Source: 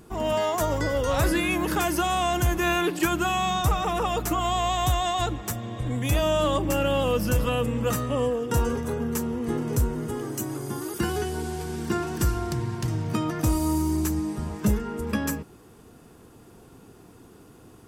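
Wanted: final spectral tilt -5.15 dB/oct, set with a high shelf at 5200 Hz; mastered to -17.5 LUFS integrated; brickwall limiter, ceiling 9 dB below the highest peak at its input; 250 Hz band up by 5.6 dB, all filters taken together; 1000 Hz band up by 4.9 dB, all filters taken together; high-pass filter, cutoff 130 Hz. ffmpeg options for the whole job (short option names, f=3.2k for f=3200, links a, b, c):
-af "highpass=130,equalizer=f=250:t=o:g=7.5,equalizer=f=1k:t=o:g=6,highshelf=f=5.2k:g=3.5,volume=7.5dB,alimiter=limit=-8.5dB:level=0:latency=1"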